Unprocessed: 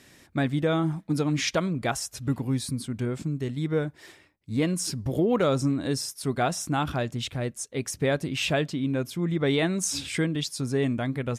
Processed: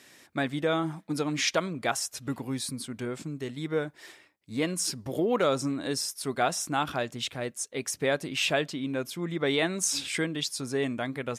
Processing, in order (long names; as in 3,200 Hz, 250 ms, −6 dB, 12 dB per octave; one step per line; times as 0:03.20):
high-pass filter 440 Hz 6 dB per octave
level +1 dB